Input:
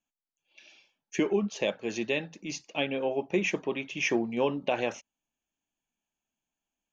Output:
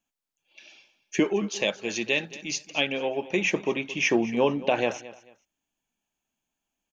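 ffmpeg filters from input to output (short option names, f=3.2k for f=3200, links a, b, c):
-filter_complex "[0:a]asettb=1/sr,asplit=3[a][b][c];[a]atrim=end=1.244[d];[b]atrim=start=1.24:end=3.44,asetpts=PTS-STARTPTS,afade=t=in:d=0.004:c=qsin,afade=t=out:st=2.196:d=0.004:c=qsin,tiltshelf=f=1.5k:g=-4.5[e];[c]atrim=start=3.436[f];[d][e]acrossfade=d=0.004:c1=hsin:c2=qsin[g];[g][f]acrossfade=d=0.004:c1=qsin:c2=hsin,aecho=1:1:221|442:0.133|0.0347,volume=4.5dB"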